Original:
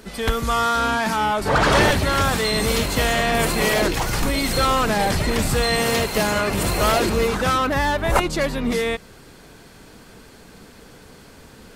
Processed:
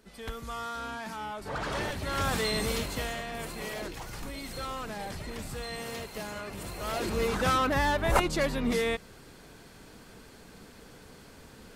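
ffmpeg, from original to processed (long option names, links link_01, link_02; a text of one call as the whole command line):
ffmpeg -i in.wav -af "volume=4.5dB,afade=type=in:start_time=1.95:duration=0.44:silence=0.334965,afade=type=out:start_time=2.39:duration=0.87:silence=0.298538,afade=type=in:start_time=6.83:duration=0.63:silence=0.251189" out.wav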